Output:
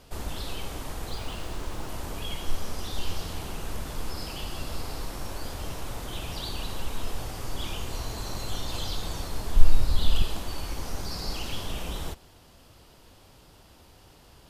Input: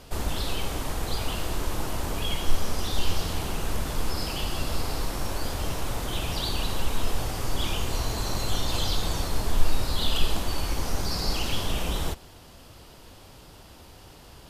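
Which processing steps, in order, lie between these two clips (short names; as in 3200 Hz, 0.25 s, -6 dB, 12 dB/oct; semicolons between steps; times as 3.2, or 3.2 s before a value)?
1.1–1.89 median filter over 3 samples; 9.56–10.22 low shelf 120 Hz +11.5 dB; gain -5.5 dB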